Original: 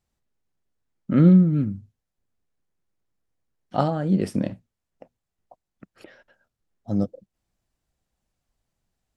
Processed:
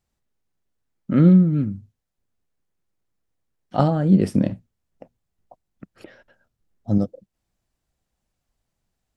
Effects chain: 3.79–6.98 s: bass shelf 330 Hz +6.5 dB; trim +1 dB

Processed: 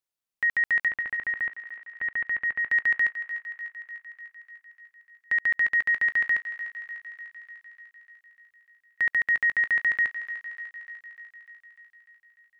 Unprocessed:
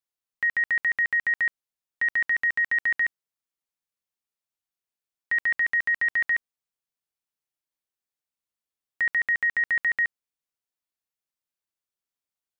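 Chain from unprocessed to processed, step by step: 0.88–2.68 s: distance through air 460 m; on a send: thinning echo 298 ms, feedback 69%, high-pass 490 Hz, level -12 dB

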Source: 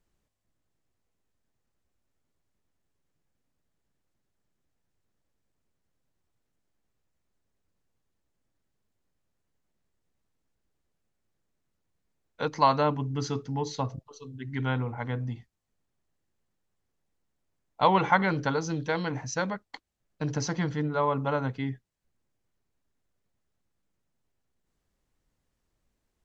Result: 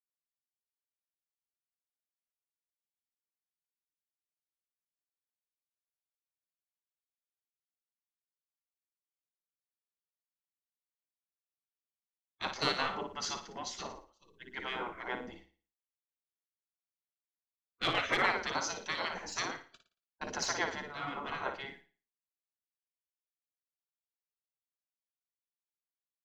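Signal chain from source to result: expander -39 dBFS; in parallel at -6 dB: saturation -23 dBFS, distortion -9 dB; on the sum: flutter echo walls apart 9.8 m, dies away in 0.42 s; spectral gate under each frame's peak -15 dB weak; three bands expanded up and down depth 40%

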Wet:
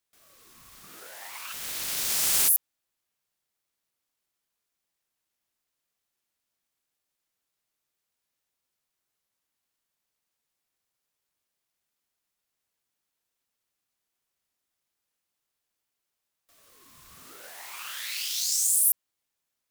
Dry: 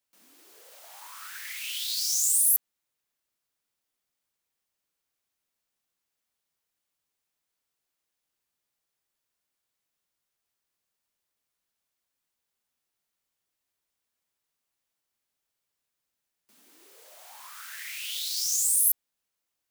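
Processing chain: 1.52–2.47 s: spectral contrast reduction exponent 0.18; wow and flutter 18 cents; ring modulator with a swept carrier 710 Hz, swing 35%, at 0.49 Hz; trim +3.5 dB

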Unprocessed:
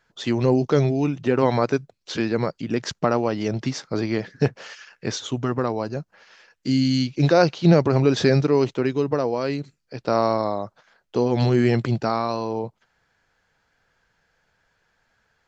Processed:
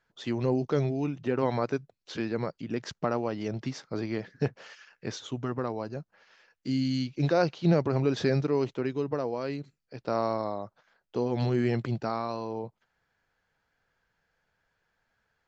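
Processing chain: treble shelf 6.3 kHz -7 dB; trim -8 dB

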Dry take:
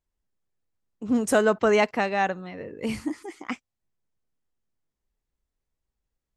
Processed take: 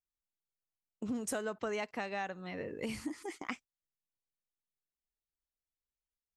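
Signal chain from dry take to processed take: treble shelf 2 kHz +5 dB; gate -41 dBFS, range -17 dB; compression 5:1, threshold -34 dBFS, peak gain reduction 17 dB; trim -2 dB

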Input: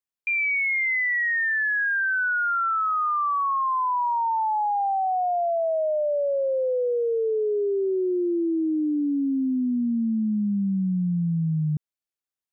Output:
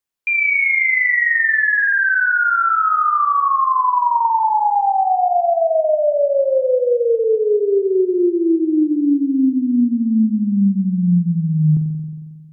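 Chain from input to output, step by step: spring tank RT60 1.7 s, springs 45 ms, chirp 55 ms, DRR 4.5 dB; trim +6.5 dB

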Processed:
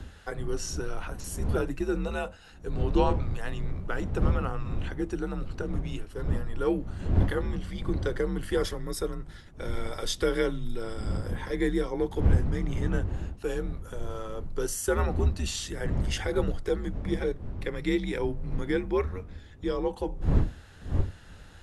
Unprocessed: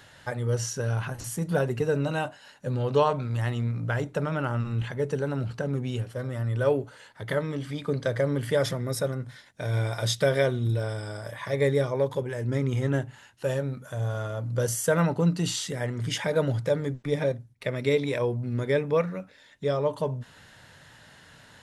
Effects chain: wind noise 170 Hz -29 dBFS; frequency shift -98 Hz; trim -3 dB

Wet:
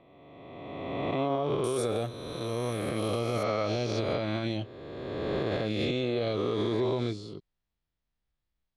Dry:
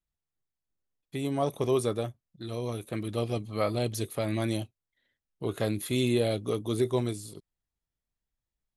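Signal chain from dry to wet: reverse spectral sustain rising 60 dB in 2.20 s; low-pass 3.5 kHz 24 dB/octave, from 1.64 s 11 kHz, from 3.43 s 4.8 kHz; peak limiter -20 dBFS, peak gain reduction 9 dB

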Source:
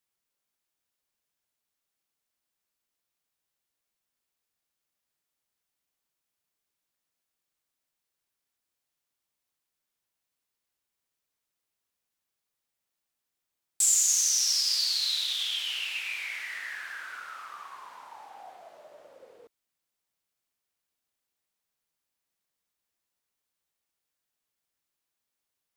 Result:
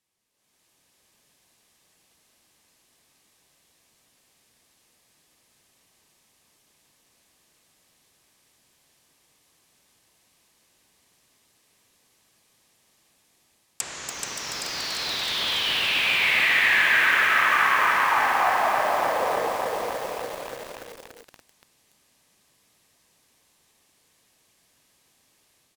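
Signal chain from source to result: low-pass 12 kHz 12 dB/octave; bass shelf 320 Hz +7.5 dB; band-stop 1.4 kHz, Q 8.5; in parallel at +1 dB: peak limiter -20.5 dBFS, peak gain reduction 8 dB; on the sum: level rider gain up to 15 dB; wavefolder -11.5 dBFS; bass shelf 62 Hz -12 dB; low-pass that closes with the level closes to 1.9 kHz, closed at -19 dBFS; bouncing-ball echo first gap 430 ms, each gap 0.9×, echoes 5; bit-crushed delay 287 ms, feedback 80%, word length 6-bit, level -5 dB; trim -1 dB

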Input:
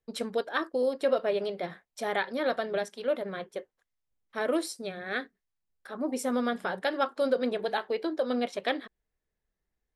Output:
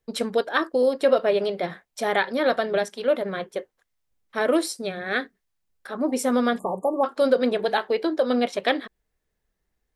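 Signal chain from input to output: spectral selection erased 6.59–7.04 s, 1.2–6.7 kHz; trim +7 dB

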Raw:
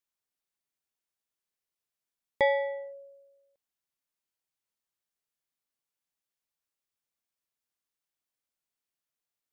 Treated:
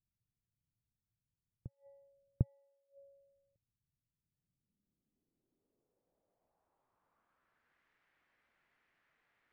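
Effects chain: reverse echo 750 ms -17 dB; inverted gate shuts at -37 dBFS, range -30 dB; low-pass sweep 120 Hz -> 1.9 kHz, 4.09–7.82 s; trim +15.5 dB

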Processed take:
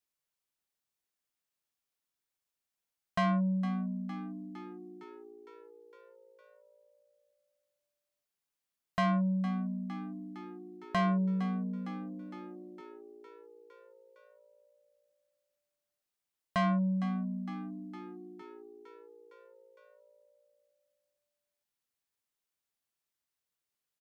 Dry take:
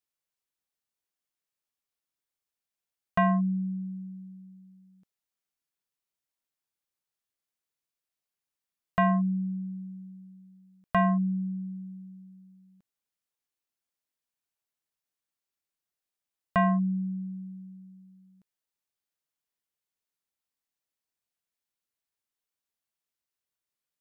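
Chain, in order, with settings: saturation -25.5 dBFS, distortion -12 dB; on a send: frequency-shifting echo 459 ms, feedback 64%, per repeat +57 Hz, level -13 dB

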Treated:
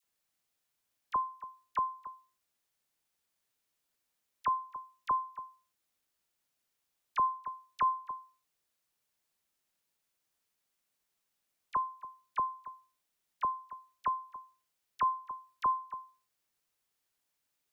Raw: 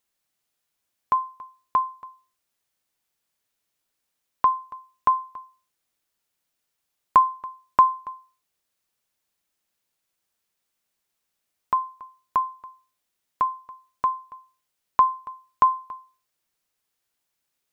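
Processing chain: in parallel at -1 dB: compression, threshold -30 dBFS, peak gain reduction 17.5 dB; on the sum: phase dispersion lows, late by 40 ms, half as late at 1.3 kHz; peak limiter -12.5 dBFS, peak gain reduction 8.5 dB; trim -9 dB

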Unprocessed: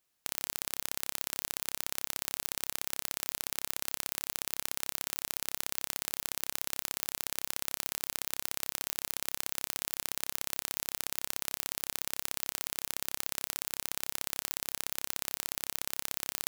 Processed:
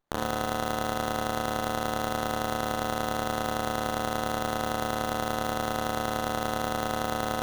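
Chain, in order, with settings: high-pass 600 Hz 24 dB/octave; wide varispeed 2.22×; differentiator; flutter echo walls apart 6.2 m, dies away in 0.71 s; sliding maximum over 17 samples

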